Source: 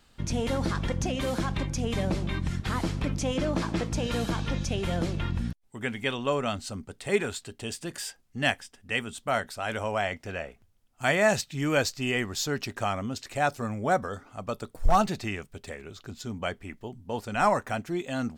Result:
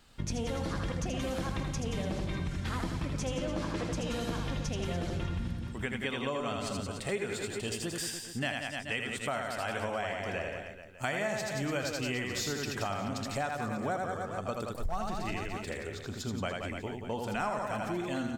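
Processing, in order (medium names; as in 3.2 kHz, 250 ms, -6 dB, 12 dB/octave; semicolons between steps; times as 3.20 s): reverse bouncing-ball echo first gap 80 ms, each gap 1.2×, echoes 5; compression 5:1, threshold -31 dBFS, peak gain reduction 16 dB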